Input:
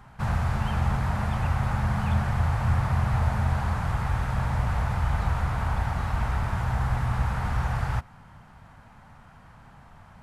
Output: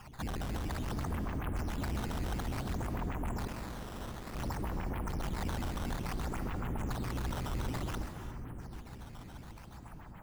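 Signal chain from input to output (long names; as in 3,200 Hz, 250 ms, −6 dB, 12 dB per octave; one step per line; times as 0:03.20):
sub-octave generator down 1 octave, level +1 dB
brickwall limiter −17 dBFS, peak gain reduction 6.5 dB
soft clipping −31.5 dBFS, distortion −8 dB
auto-filter low-pass sine 7.1 Hz 280–3,200 Hz
0:03.47–0:04.35: wrap-around overflow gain 37 dB
on a send: echo with a time of its own for lows and highs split 480 Hz, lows 755 ms, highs 132 ms, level −9 dB
on the sum: sample-and-hold swept by an LFO 11×, swing 160% 0.57 Hz
reverb whose tail is shaped and stops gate 380 ms rising, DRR 9 dB
level −4 dB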